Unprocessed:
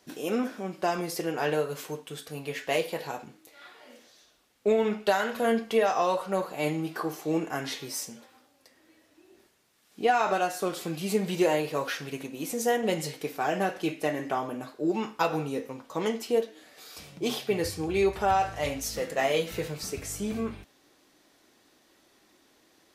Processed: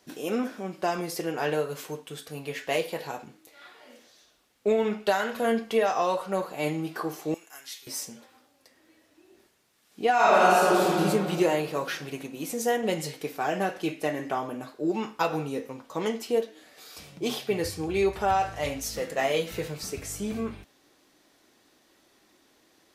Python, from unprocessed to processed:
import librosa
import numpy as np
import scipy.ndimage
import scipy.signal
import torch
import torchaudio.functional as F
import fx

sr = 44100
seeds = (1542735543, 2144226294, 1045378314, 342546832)

y = fx.differentiator(x, sr, at=(7.34, 7.87))
y = fx.reverb_throw(y, sr, start_s=10.14, length_s=0.85, rt60_s=2.4, drr_db=-7.5)